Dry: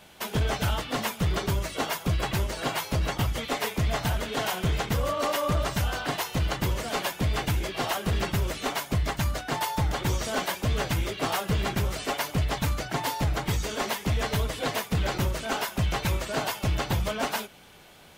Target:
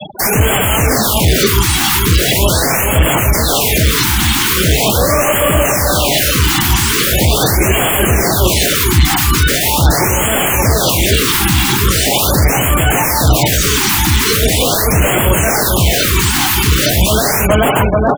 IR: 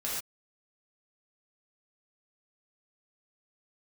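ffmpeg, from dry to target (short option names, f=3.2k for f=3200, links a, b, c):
-filter_complex "[0:a]asplit=2[a][b];[b]adelay=430,lowpass=f=1.4k:p=1,volume=-5.5dB,asplit=2[c][d];[d]adelay=430,lowpass=f=1.4k:p=1,volume=0.49,asplit=2[e][f];[f]adelay=430,lowpass=f=1.4k:p=1,volume=0.49,asplit=2[g][h];[h]adelay=430,lowpass=f=1.4k:p=1,volume=0.49,asplit=2[i][j];[j]adelay=430,lowpass=f=1.4k:p=1,volume=0.49,asplit=2[k][l];[l]adelay=430,lowpass=f=1.4k:p=1,volume=0.49[m];[a][c][e][g][i][k][m]amix=inputs=7:normalize=0,acrossover=split=770|4900[n][o][p];[o]aeval=exprs='(mod(56.2*val(0)+1,2)-1)/56.2':c=same[q];[n][q][p]amix=inputs=3:normalize=0,highshelf=f=7.7k:g=10.5,asplit=2[r][s];[s]acompressor=threshold=-35dB:ratio=6,volume=-2dB[t];[r][t]amix=inputs=2:normalize=0,highpass=f=68:w=0.5412,highpass=f=68:w=1.3066,afftfilt=real='re*gte(hypot(re,im),0.0141)':imag='im*gte(hypot(re,im),0.0141)':win_size=1024:overlap=0.75,bass=f=250:g=-3,treble=f=4k:g=14,asoftclip=type=hard:threshold=-28.5dB,acrossover=split=3900[u][v];[v]acompressor=threshold=-42dB:ratio=4:attack=1:release=60[w];[u][w]amix=inputs=2:normalize=0,alimiter=level_in=30.5dB:limit=-1dB:release=50:level=0:latency=1,afftfilt=real='re*(1-between(b*sr/1024,510*pow(4900/510,0.5+0.5*sin(2*PI*0.41*pts/sr))/1.41,510*pow(4900/510,0.5+0.5*sin(2*PI*0.41*pts/sr))*1.41))':imag='im*(1-between(b*sr/1024,510*pow(4900/510,0.5+0.5*sin(2*PI*0.41*pts/sr))/1.41,510*pow(4900/510,0.5+0.5*sin(2*PI*0.41*pts/sr))*1.41))':win_size=1024:overlap=0.75,volume=-2.5dB"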